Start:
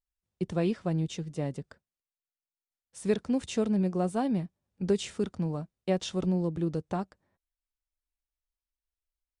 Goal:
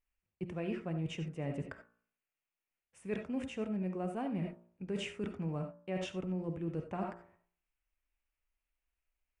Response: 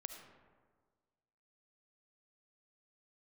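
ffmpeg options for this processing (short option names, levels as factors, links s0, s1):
-filter_complex "[0:a]highshelf=f=3200:t=q:w=3:g=-7.5[s0];[1:a]atrim=start_sample=2205,atrim=end_sample=4410[s1];[s0][s1]afir=irnorm=-1:irlink=0,areverse,acompressor=threshold=0.00631:ratio=6,areverse,bandreject=f=58.21:t=h:w=4,bandreject=f=116.42:t=h:w=4,bandreject=f=174.63:t=h:w=4,bandreject=f=232.84:t=h:w=4,bandreject=f=291.05:t=h:w=4,bandreject=f=349.26:t=h:w=4,bandreject=f=407.47:t=h:w=4,bandreject=f=465.68:t=h:w=4,bandreject=f=523.89:t=h:w=4,bandreject=f=582.1:t=h:w=4,bandreject=f=640.31:t=h:w=4,bandreject=f=698.52:t=h:w=4,bandreject=f=756.73:t=h:w=4,bandreject=f=814.94:t=h:w=4,bandreject=f=873.15:t=h:w=4,bandreject=f=931.36:t=h:w=4,bandreject=f=989.57:t=h:w=4,bandreject=f=1047.78:t=h:w=4,bandreject=f=1105.99:t=h:w=4,bandreject=f=1164.2:t=h:w=4,bandreject=f=1222.41:t=h:w=4,bandreject=f=1280.62:t=h:w=4,bandreject=f=1338.83:t=h:w=4,bandreject=f=1397.04:t=h:w=4,bandreject=f=1455.25:t=h:w=4,bandreject=f=1513.46:t=h:w=4,bandreject=f=1571.67:t=h:w=4,bandreject=f=1629.88:t=h:w=4,bandreject=f=1688.09:t=h:w=4,bandreject=f=1746.3:t=h:w=4,volume=2.82"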